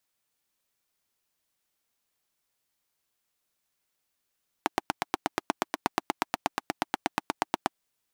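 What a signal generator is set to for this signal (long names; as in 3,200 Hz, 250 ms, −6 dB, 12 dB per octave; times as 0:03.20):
pulse-train model of a single-cylinder engine, steady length 3.10 s, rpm 1,000, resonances 320/790 Hz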